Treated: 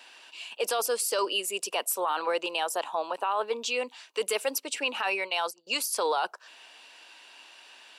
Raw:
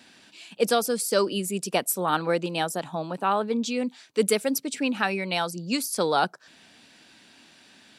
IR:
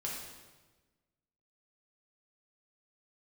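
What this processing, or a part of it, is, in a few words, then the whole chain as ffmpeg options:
laptop speaker: -filter_complex "[0:a]asettb=1/sr,asplit=3[a][b][c];[a]atrim=end=5.034[d];[b]atrim=start=5.03:end=5.67,asetpts=PTS-STARTPTS,afade=t=in:d=0.004:c=qsin,afade=t=out:st=0.636:d=0.004:c=qsin,agate=range=-21dB:threshold=-30dB:ratio=16:detection=peak[e];[c]atrim=start=5.666[f];[d][e]acrossfade=d=0.004:c1=hsin:c2=qsin[g];[g][f]acrossfade=d=0.004:c1=qsin:c2=hsin,highpass=f=420:w=0.5412,highpass=f=420:w=1.3066,equalizer=f=1k:t=o:w=0.5:g=8,equalizer=f=2.8k:t=o:w=0.21:g=10,alimiter=limit=-18.5dB:level=0:latency=1:release=12"

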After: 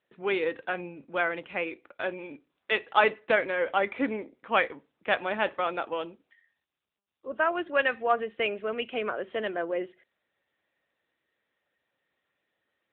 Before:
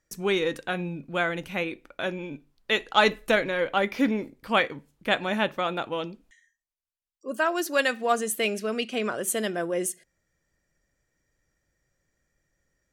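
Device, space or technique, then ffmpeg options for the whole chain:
telephone: -filter_complex "[0:a]asettb=1/sr,asplit=3[a][b][c];[a]atrim=end=8.164[d];[b]atrim=start=8.16:end=8.6,asetpts=PTS-STARTPTS,afade=t=in:d=0.004:c=qsin,afade=t=out:st=0.436:d=0.004:c=qsin,highshelf=f=8.9k:g=3.5[e];[c]atrim=start=8.596[f];[d][e]acrossfade=d=0.004:c1=hsin:c2=qsin[g];[g][f]acrossfade=d=0.004:c1=qsin:c2=hsin,highpass=360,lowpass=3.1k" -ar 8000 -c:a libopencore_amrnb -b:a 10200

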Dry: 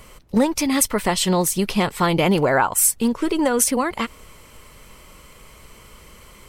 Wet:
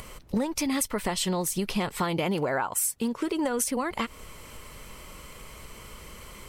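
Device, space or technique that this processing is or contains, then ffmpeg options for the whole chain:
upward and downward compression: -filter_complex "[0:a]asettb=1/sr,asplit=3[a][b][c];[a]atrim=end=2.004[d];[b]atrim=start=2:end=3.45,asetpts=PTS-STARTPTS,afade=t=in:d=0.004:c=qsin,afade=t=out:st=1.446:d=0.004:c=qsin,highpass=f=86:p=1[e];[c]atrim=start=3.446[f];[d][e]acrossfade=d=0.004:c1=hsin:c2=qsin[g];[g][f]acrossfade=d=0.004:c1=qsin:c2=hsin,acompressor=mode=upward:threshold=-40dB:ratio=2.5,acompressor=threshold=-26dB:ratio=4"

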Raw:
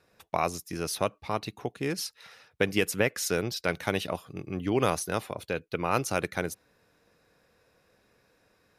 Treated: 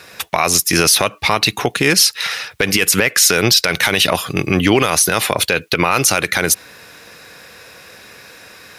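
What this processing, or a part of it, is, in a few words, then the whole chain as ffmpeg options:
mastering chain: -af "highpass=56,equalizer=f=2.2k:t=o:w=1.5:g=2.5,acompressor=threshold=-28dB:ratio=2.5,asoftclip=type=tanh:threshold=-14.5dB,tiltshelf=f=1.2k:g=-5.5,alimiter=level_in=26dB:limit=-1dB:release=50:level=0:latency=1,volume=-1dB"

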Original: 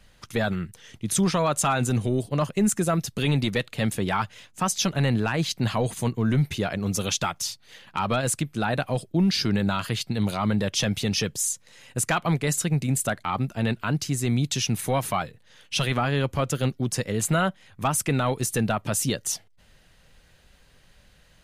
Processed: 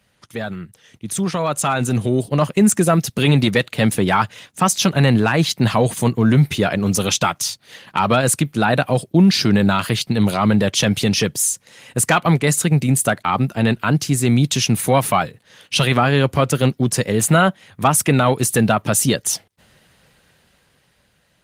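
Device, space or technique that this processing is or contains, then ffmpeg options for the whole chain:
video call: -af "highpass=100,dynaudnorm=f=340:g=11:m=14.5dB,volume=-1dB" -ar 48000 -c:a libopus -b:a 24k

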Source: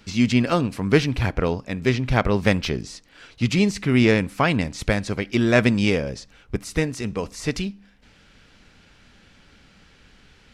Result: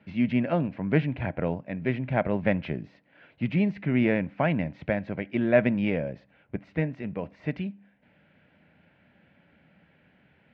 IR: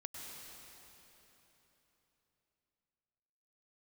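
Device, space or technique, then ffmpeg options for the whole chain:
bass cabinet: -af "highpass=f=87:w=0.5412,highpass=f=87:w=1.3066,equalizer=f=110:t=q:w=4:g=-6,equalizer=f=160:t=q:w=4:g=5,equalizer=f=430:t=q:w=4:g=-5,equalizer=f=610:t=q:w=4:g=7,equalizer=f=1.2k:t=q:w=4:g=-10,lowpass=f=2.4k:w=0.5412,lowpass=f=2.4k:w=1.3066,volume=-5.5dB"

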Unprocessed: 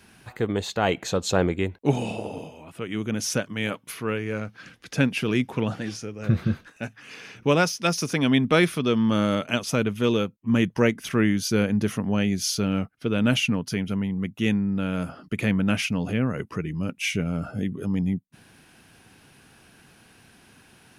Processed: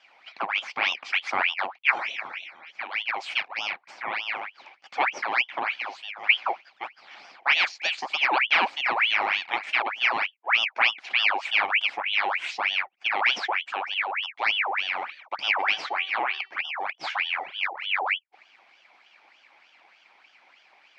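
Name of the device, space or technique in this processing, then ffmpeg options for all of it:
voice changer toy: -filter_complex "[0:a]aeval=exprs='val(0)*sin(2*PI*1900*n/s+1900*0.7/3.3*sin(2*PI*3.3*n/s))':c=same,highpass=420,equalizer=f=450:t=q:w=4:g=-9,equalizer=f=790:t=q:w=4:g=6,equalizer=f=2.3k:t=q:w=4:g=9,equalizer=f=3.7k:t=q:w=4:g=-5,lowpass=f=4.7k:w=0.5412,lowpass=f=4.7k:w=1.3066,asplit=3[a][b][c];[a]afade=t=out:st=15.58:d=0.02[d];[b]bandreject=f=385.1:t=h:w=4,bandreject=f=770.2:t=h:w=4,bandreject=f=1.1553k:t=h:w=4,bandreject=f=1.5404k:t=h:w=4,bandreject=f=1.9255k:t=h:w=4,bandreject=f=2.3106k:t=h:w=4,bandreject=f=2.6957k:t=h:w=4,bandreject=f=3.0808k:t=h:w=4,bandreject=f=3.4659k:t=h:w=4,bandreject=f=3.851k:t=h:w=4,bandreject=f=4.2361k:t=h:w=4,bandreject=f=4.6212k:t=h:w=4,bandreject=f=5.0063k:t=h:w=4,bandreject=f=5.3914k:t=h:w=4,bandreject=f=5.7765k:t=h:w=4,bandreject=f=6.1616k:t=h:w=4,bandreject=f=6.5467k:t=h:w=4,afade=t=in:st=15.58:d=0.02,afade=t=out:st=16.6:d=0.02[e];[c]afade=t=in:st=16.6:d=0.02[f];[d][e][f]amix=inputs=3:normalize=0,volume=-2dB"

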